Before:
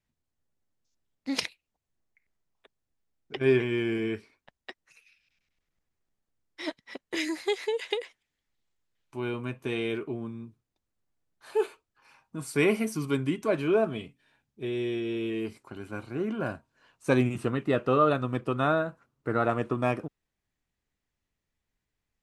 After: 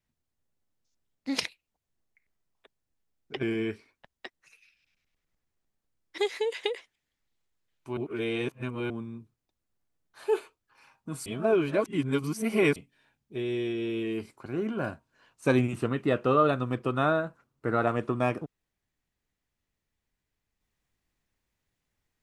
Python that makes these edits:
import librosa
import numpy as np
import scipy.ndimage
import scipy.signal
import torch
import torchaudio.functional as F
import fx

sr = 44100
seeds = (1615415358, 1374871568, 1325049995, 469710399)

y = fx.edit(x, sr, fx.cut(start_s=3.43, length_s=0.44),
    fx.cut(start_s=6.62, length_s=0.83),
    fx.reverse_span(start_s=9.24, length_s=0.93),
    fx.reverse_span(start_s=12.53, length_s=1.5),
    fx.cut(start_s=15.73, length_s=0.35), tone=tone)